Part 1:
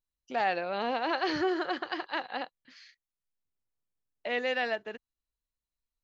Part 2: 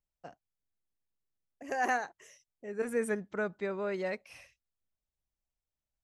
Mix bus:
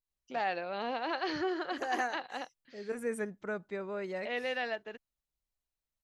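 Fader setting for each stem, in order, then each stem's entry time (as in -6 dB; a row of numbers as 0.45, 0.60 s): -4.5, -3.5 dB; 0.00, 0.10 s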